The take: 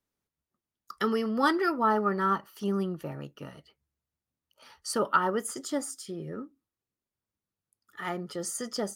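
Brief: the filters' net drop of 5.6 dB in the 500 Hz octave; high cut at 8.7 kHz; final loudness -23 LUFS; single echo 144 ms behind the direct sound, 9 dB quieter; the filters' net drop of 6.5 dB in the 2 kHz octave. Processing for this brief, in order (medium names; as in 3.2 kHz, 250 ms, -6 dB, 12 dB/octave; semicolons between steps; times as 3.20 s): low-pass 8.7 kHz; peaking EQ 500 Hz -7 dB; peaking EQ 2 kHz -9 dB; delay 144 ms -9 dB; trim +10 dB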